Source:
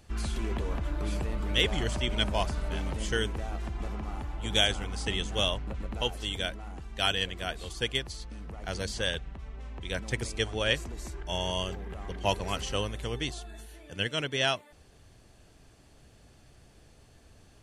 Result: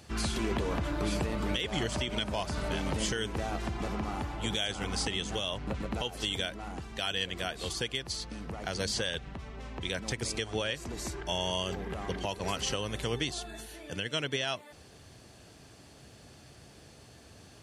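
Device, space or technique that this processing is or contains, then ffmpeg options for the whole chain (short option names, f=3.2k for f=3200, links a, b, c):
broadcast voice chain: -af "highpass=90,deesser=0.45,acompressor=threshold=-31dB:ratio=3,equalizer=f=4.8k:t=o:w=0.77:g=3,alimiter=level_in=1dB:limit=-24dB:level=0:latency=1:release=174,volume=-1dB,volume=5.5dB"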